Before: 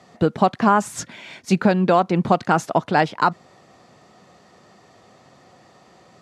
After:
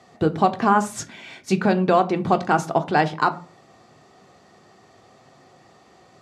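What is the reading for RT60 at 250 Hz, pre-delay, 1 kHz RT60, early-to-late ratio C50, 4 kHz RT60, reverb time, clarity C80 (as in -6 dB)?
0.40 s, 3 ms, 0.35 s, 18.0 dB, 0.20 s, 0.40 s, 23.0 dB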